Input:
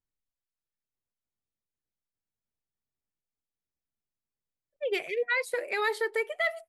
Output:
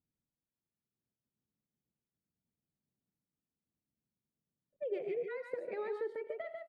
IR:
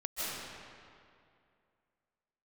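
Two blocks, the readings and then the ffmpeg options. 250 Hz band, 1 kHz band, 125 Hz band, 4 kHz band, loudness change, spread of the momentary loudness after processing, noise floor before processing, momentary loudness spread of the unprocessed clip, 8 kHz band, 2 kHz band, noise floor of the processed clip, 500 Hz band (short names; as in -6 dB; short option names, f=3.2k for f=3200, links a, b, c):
-3.0 dB, -14.5 dB, n/a, under -25 dB, -10.0 dB, 5 LU, under -85 dBFS, 4 LU, under -30 dB, -21.0 dB, under -85 dBFS, -6.5 dB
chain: -af "acompressor=threshold=-38dB:ratio=4,bandpass=f=190:t=q:w=1.4:csg=0,aecho=1:1:83|111|145:0.133|0.15|0.562,volume=11.5dB"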